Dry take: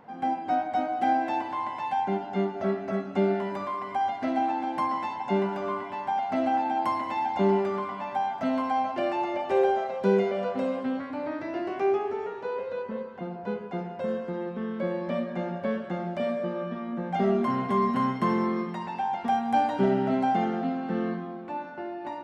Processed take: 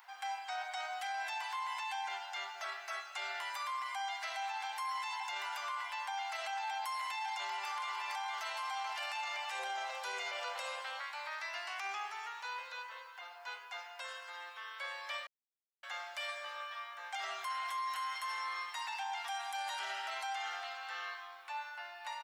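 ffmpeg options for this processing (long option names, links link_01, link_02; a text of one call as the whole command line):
ffmpeg -i in.wav -filter_complex "[0:a]asplit=2[link_01][link_02];[link_02]afade=type=in:start_time=7.17:duration=0.01,afade=type=out:start_time=8.06:duration=0.01,aecho=0:1:460|920|1380|1840|2300|2760|3220|3680|4140|4600|5060|5520:0.501187|0.37589|0.281918|0.211438|0.158579|0.118934|0.0892006|0.0669004|0.0501753|0.0376315|0.0282236|0.0211677[link_03];[link_01][link_03]amix=inputs=2:normalize=0,asettb=1/sr,asplit=3[link_04][link_05][link_06];[link_04]atrim=end=9.594[link_07];[link_05]atrim=start=9.59:end=11.05,asetpts=PTS-STARTPTS,afade=type=in:duration=0.004:curve=qsin,afade=type=out:start_time=1.456:duration=0.004:curve=qsin,equalizer=frequency=470:width_type=o:width=0.82:gain=9[link_08];[link_06]atrim=start=11.046[link_09];[link_07][link_08]acrossfade=duration=0.004:curve1=hsin:curve2=qsin[link_10];[link_10][link_09]acrossfade=duration=0.004:curve1=qsin:curve2=hsin,asplit=3[link_11][link_12][link_13];[link_11]atrim=end=15.27,asetpts=PTS-STARTPTS,afade=type=out:start_time=15.266:duration=0.004:curve=hsin[link_14];[link_12]atrim=start=15.27:end=15.83,asetpts=PTS-STARTPTS,volume=0[link_15];[link_13]atrim=start=15.83,asetpts=PTS-STARTPTS,afade=type=in:duration=0.004:curve=hsin[link_16];[link_14][link_15][link_16]concat=n=3:v=0:a=1,highpass=frequency=850:width=0.5412,highpass=frequency=850:width=1.3066,aderivative,alimiter=level_in=21dB:limit=-24dB:level=0:latency=1:release=17,volume=-21dB,volume=13.5dB" out.wav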